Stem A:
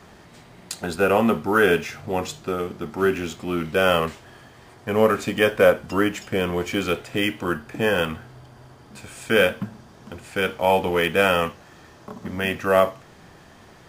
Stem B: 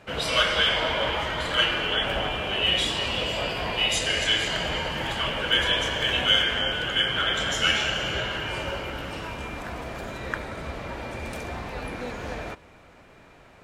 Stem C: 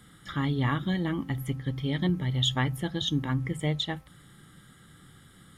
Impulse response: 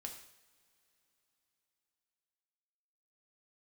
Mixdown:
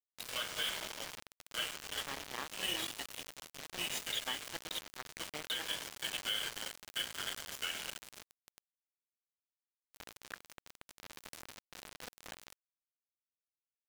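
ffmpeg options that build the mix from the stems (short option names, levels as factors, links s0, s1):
-filter_complex "[1:a]highshelf=f=2100:g=6.5,volume=0.299,afade=t=in:st=9.69:d=0.25:silence=0.398107,asplit=2[s0][s1];[s1]volume=0.596[s2];[2:a]highpass=450,adelay=1700,volume=0.376,asplit=2[s3][s4];[s4]volume=0.266[s5];[3:a]atrim=start_sample=2205[s6];[s2][s5]amix=inputs=2:normalize=0[s7];[s7][s6]afir=irnorm=-1:irlink=0[s8];[s0][s3][s8]amix=inputs=3:normalize=0,highpass=190,aeval=exprs='val(0)*gte(abs(val(0)),0.0211)':c=same,alimiter=level_in=1.19:limit=0.0631:level=0:latency=1:release=175,volume=0.841"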